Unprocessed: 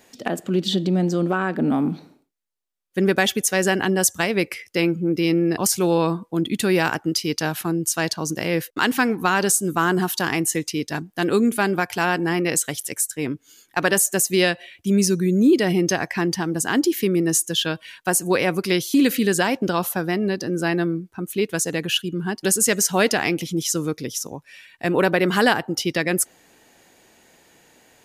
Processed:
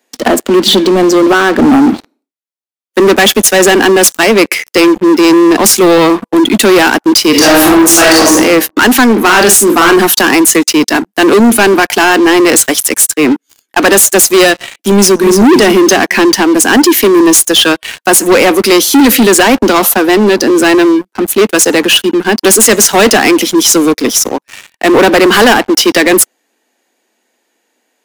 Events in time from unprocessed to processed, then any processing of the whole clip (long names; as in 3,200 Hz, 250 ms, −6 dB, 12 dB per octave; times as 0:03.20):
0:07.30–0:08.32: thrown reverb, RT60 0.82 s, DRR −5.5 dB
0:09.12–0:09.98: double-tracking delay 44 ms −6 dB
0:14.92–0:15.41: delay throw 290 ms, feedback 35%, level −9 dB
whole clip: Butterworth high-pass 210 Hz 72 dB per octave; leveller curve on the samples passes 5; level +2.5 dB